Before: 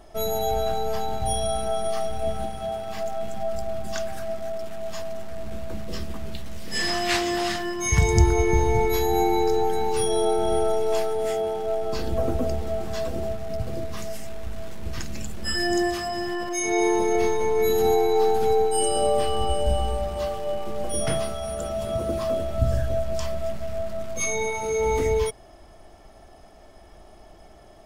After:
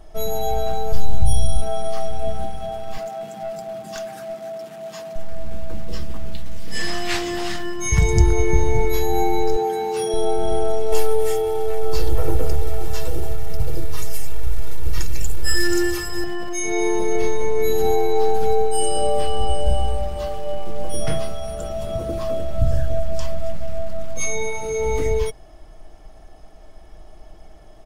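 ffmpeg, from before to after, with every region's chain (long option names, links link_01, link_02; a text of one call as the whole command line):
ffmpeg -i in.wav -filter_complex "[0:a]asettb=1/sr,asplit=3[link_01][link_02][link_03];[link_01]atrim=end=0.924[link_04];[link_02]atrim=start=0.92:end=1.62,asetpts=PTS-STARTPTS,afade=type=in:duration=0.004:curve=qsin,afade=type=out:start_time=0.696:duration=0.004:curve=qsin,bass=frequency=250:gain=9,treble=frequency=4000:gain=2,acrossover=split=160|3000[link_05][link_06][link_07];[link_06]acompressor=threshold=-33dB:ratio=4:attack=3.2:release=140:knee=2.83:detection=peak[link_08];[link_05][link_08][link_07]amix=inputs=3:normalize=0[link_09];[link_03]atrim=start=1.616[link_10];[link_04][link_09]acrossfade=duration=0.004:curve1=hsin:curve2=qsin[link_11];[link_11][link_10]acrossfade=duration=0.004:curve1=qsin:curve2=hsin,asettb=1/sr,asplit=3[link_12][link_13][link_14];[link_12]atrim=end=2.974[link_15];[link_13]atrim=start=2.97:end=5.16,asetpts=PTS-STARTPTS,afade=type=in:duration=0.004:curve=qsin,afade=type=out:start_time=2.186:duration=0.004:curve=qsin,highpass=frequency=150:width=0.5412,highpass=frequency=150:width=1.3066,aeval=exprs='clip(val(0),-1,0.0501)':channel_layout=same[link_16];[link_14]atrim=start=5.156[link_17];[link_15][link_16]acrossfade=duration=0.004:curve1=hsin:curve2=qsin[link_18];[link_18][link_17]acrossfade=duration=0.004:curve1=qsin:curve2=hsin,asettb=1/sr,asplit=3[link_19][link_20][link_21];[link_19]atrim=end=9.564[link_22];[link_20]atrim=start=9.56:end=10.14,asetpts=PTS-STARTPTS,afade=type=in:duration=0.004:curve=qsin,afade=type=out:start_time=0.576:duration=0.004:curve=qsin,highpass=200,asplit=2[link_23][link_24];[link_24]adelay=14,volume=-11dB[link_25];[link_23][link_25]amix=inputs=2:normalize=0,atrim=end_sample=25578[link_26];[link_21]atrim=start=10.136[link_27];[link_22][link_26]acrossfade=duration=0.004:curve1=hsin:curve2=qsin[link_28];[link_28][link_27]acrossfade=duration=0.004:curve1=qsin:curve2=hsin,asettb=1/sr,asplit=3[link_29][link_30][link_31];[link_29]atrim=end=10.924[link_32];[link_30]atrim=start=10.92:end=16.24,asetpts=PTS-STARTPTS,afade=type=in:duration=0.004:curve=qsin,afade=type=out:start_time=5.316:duration=0.004:curve=qsin,aeval=exprs='clip(val(0),-1,0.119)':channel_layout=same,equalizer=frequency=13000:width_type=o:width=0.98:gain=10.5,aecho=1:1:2.2:0.99,atrim=end_sample=234612[link_33];[link_31]atrim=start=16.236[link_34];[link_32][link_33]acrossfade=duration=0.004:curve1=hsin:curve2=qsin[link_35];[link_35][link_34]acrossfade=duration=0.004:curve1=qsin:curve2=hsin,lowshelf=frequency=71:gain=11.5,aecho=1:1:6.4:0.31,volume=-1dB" out.wav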